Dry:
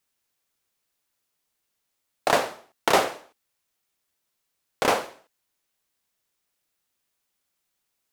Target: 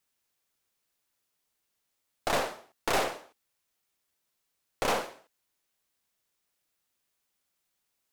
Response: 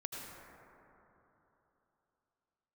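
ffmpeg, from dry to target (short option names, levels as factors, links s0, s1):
-af "aeval=exprs='(tanh(14.1*val(0)+0.45)-tanh(0.45))/14.1':c=same"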